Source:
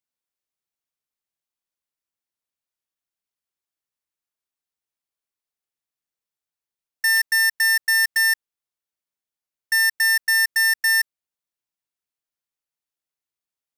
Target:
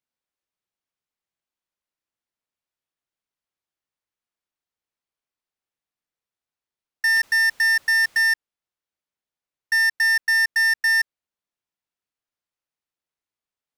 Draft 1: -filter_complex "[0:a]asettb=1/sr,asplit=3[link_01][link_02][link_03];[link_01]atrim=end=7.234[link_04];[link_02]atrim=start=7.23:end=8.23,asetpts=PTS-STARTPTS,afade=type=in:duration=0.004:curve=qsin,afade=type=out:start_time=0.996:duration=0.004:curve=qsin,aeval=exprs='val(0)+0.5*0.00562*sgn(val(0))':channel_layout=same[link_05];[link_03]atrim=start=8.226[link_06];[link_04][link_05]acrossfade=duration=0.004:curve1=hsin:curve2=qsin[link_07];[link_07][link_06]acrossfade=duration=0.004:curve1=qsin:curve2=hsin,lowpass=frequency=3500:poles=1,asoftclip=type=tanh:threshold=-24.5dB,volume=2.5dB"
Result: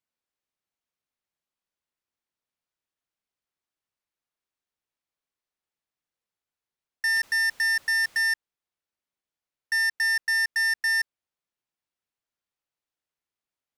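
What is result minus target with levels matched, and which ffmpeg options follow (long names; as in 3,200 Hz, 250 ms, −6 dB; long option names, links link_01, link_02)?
soft clipping: distortion +14 dB
-filter_complex "[0:a]asettb=1/sr,asplit=3[link_01][link_02][link_03];[link_01]atrim=end=7.234[link_04];[link_02]atrim=start=7.23:end=8.23,asetpts=PTS-STARTPTS,afade=type=in:duration=0.004:curve=qsin,afade=type=out:start_time=0.996:duration=0.004:curve=qsin,aeval=exprs='val(0)+0.5*0.00562*sgn(val(0))':channel_layout=same[link_05];[link_03]atrim=start=8.226[link_06];[link_04][link_05]acrossfade=duration=0.004:curve1=hsin:curve2=qsin[link_07];[link_07][link_06]acrossfade=duration=0.004:curve1=qsin:curve2=hsin,lowpass=frequency=3500:poles=1,asoftclip=type=tanh:threshold=-15dB,volume=2.5dB"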